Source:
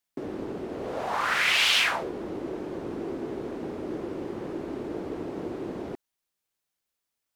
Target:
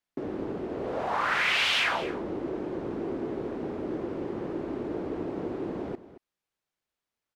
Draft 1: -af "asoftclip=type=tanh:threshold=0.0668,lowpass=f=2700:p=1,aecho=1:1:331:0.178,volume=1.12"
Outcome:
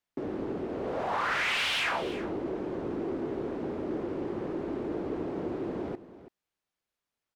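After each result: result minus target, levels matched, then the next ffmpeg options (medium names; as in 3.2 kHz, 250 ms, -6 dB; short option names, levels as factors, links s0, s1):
echo 106 ms late; saturation: distortion +12 dB
-af "asoftclip=type=tanh:threshold=0.0668,lowpass=f=2700:p=1,aecho=1:1:225:0.178,volume=1.12"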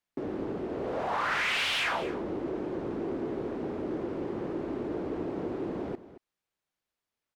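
saturation: distortion +12 dB
-af "asoftclip=type=tanh:threshold=0.2,lowpass=f=2700:p=1,aecho=1:1:225:0.178,volume=1.12"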